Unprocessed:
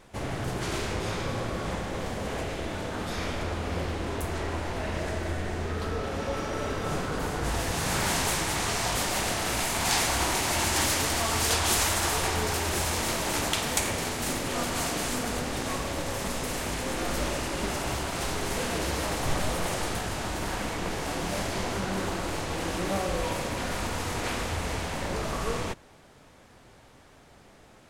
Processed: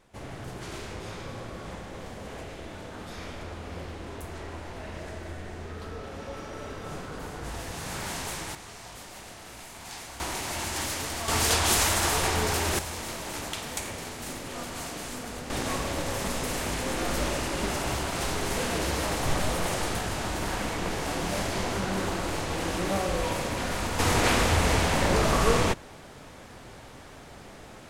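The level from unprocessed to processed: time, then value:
−7.5 dB
from 0:08.55 −16 dB
from 0:10.20 −6 dB
from 0:11.28 +1.5 dB
from 0:12.79 −7 dB
from 0:15.50 +1 dB
from 0:23.99 +8 dB

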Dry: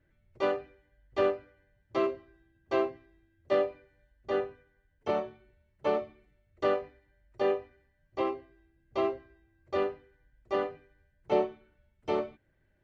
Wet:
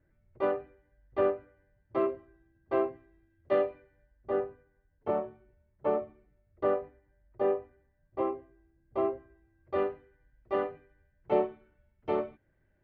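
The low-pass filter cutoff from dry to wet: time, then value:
0:02.81 1,600 Hz
0:03.70 2,500 Hz
0:04.33 1,300 Hz
0:09.13 1,300 Hz
0:09.88 2,200 Hz

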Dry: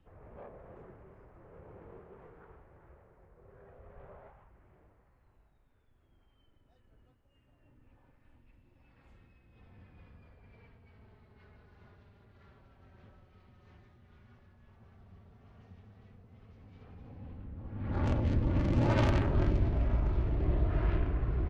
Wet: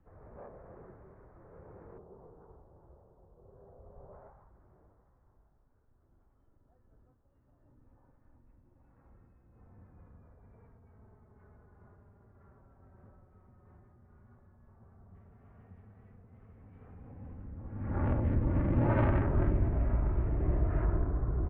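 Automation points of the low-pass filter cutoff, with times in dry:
low-pass filter 24 dB per octave
1,800 Hz
from 0:01.98 1,000 Hz
from 0:04.13 1,400 Hz
from 0:15.15 2,000 Hz
from 0:20.85 1,400 Hz

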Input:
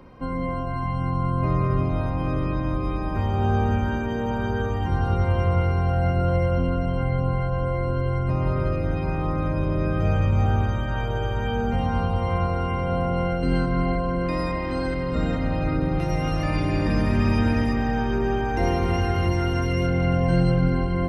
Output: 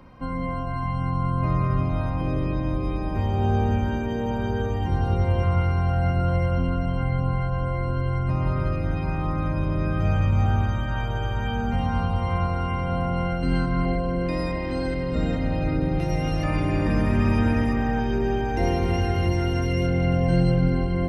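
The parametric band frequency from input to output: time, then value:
parametric band −7 dB 0.69 octaves
410 Hz
from 0:02.21 1,300 Hz
from 0:05.43 450 Hz
from 0:13.85 1,200 Hz
from 0:16.44 4,500 Hz
from 0:18.00 1,200 Hz

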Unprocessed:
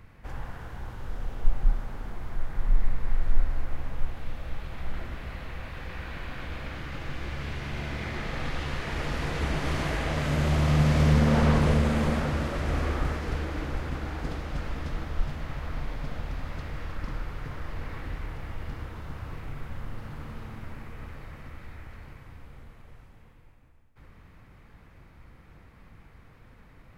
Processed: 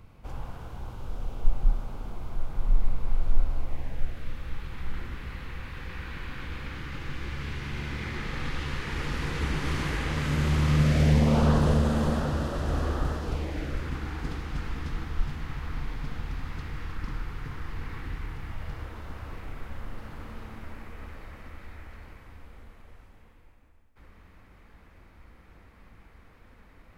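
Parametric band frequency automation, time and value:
parametric band −12.5 dB 0.43 octaves
0:03.59 1,800 Hz
0:04.41 650 Hz
0:10.71 650 Hz
0:11.50 2,200 Hz
0:13.23 2,200 Hz
0:13.93 600 Hz
0:18.46 600 Hz
0:18.93 130 Hz

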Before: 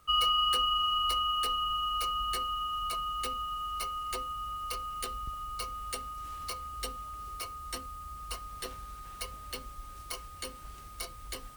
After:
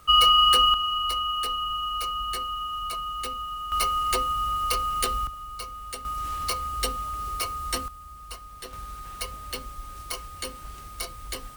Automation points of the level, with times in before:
+9.5 dB
from 0:00.74 +2.5 dB
from 0:03.72 +11 dB
from 0:05.27 +1 dB
from 0:06.05 +10 dB
from 0:07.88 −0.5 dB
from 0:08.73 +6 dB

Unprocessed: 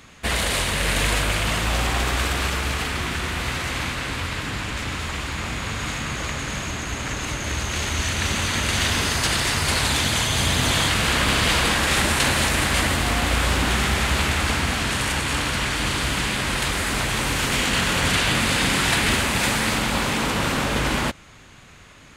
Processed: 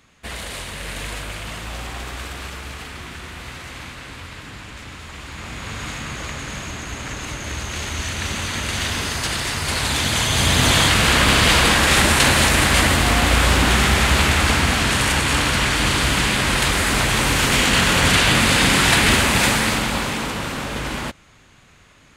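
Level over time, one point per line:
0:05.05 −8.5 dB
0:05.76 −2 dB
0:09.59 −2 dB
0:10.64 +5 dB
0:19.40 +5 dB
0:20.48 −4 dB

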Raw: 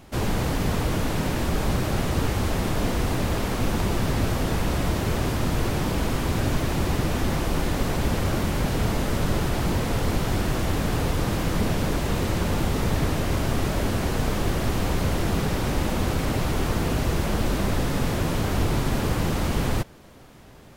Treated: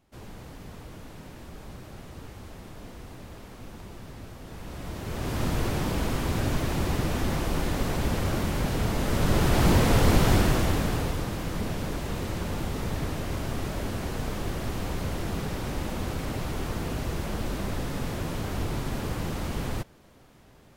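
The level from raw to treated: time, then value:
0:04.40 −19 dB
0:05.07 −10 dB
0:05.41 −3 dB
0:08.93 −3 dB
0:09.66 +4 dB
0:10.32 +4 dB
0:11.31 −7 dB

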